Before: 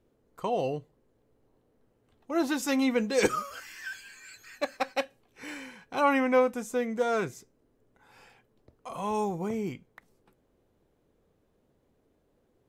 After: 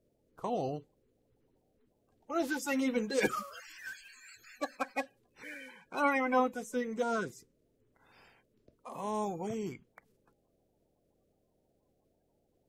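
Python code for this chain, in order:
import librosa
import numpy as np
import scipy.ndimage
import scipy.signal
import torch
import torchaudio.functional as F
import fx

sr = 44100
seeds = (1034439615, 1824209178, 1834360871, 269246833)

y = fx.spec_quant(x, sr, step_db=30)
y = y * 10.0 ** (-4.5 / 20.0)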